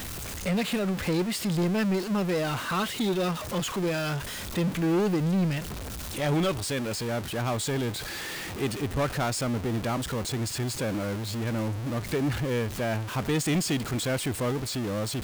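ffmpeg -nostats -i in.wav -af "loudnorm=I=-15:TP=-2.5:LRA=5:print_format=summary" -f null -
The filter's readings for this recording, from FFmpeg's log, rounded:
Input Integrated:    -28.6 LUFS
Input True Peak:     -20.2 dBTP
Input LRA:             1.7 LU
Input Threshold:     -38.6 LUFS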